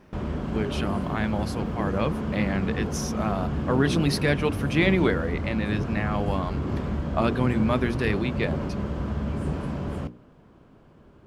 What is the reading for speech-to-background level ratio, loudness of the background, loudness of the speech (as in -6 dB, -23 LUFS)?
2.5 dB, -30.0 LUFS, -27.5 LUFS